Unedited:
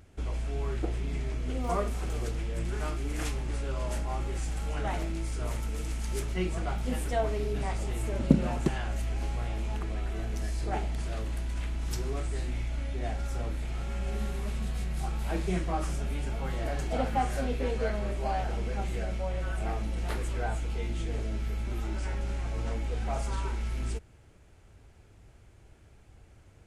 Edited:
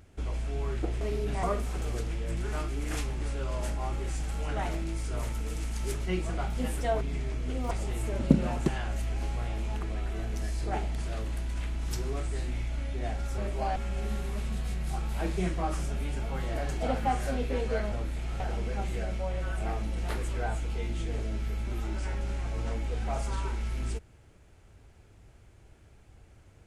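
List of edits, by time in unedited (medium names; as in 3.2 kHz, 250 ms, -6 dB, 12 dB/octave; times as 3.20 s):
1.01–1.71 s: swap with 7.29–7.71 s
13.38–13.86 s: swap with 18.02–18.40 s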